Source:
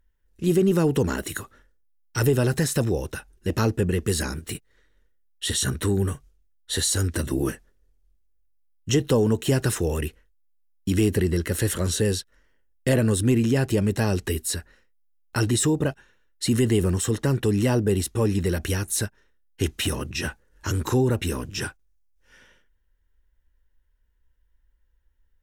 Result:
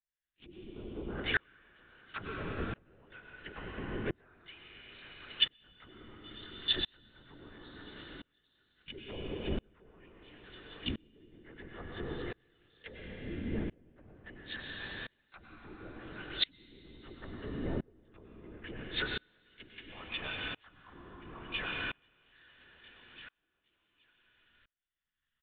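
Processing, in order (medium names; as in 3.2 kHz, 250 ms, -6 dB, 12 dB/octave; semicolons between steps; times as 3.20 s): partials quantised in pitch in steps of 3 st; feedback delay 813 ms, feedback 53%, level -23.5 dB; LPC vocoder at 8 kHz whisper; compression 1.5:1, threshold -29 dBFS, peak gain reduction 5.5 dB; low-pass that closes with the level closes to 400 Hz, closed at -23 dBFS; tilt shelf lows -10 dB, about 890 Hz; on a send at -2 dB: reverberation RT60 2.8 s, pre-delay 88 ms; on the sum: sawtooth tremolo in dB swelling 0.73 Hz, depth 33 dB; trim +1 dB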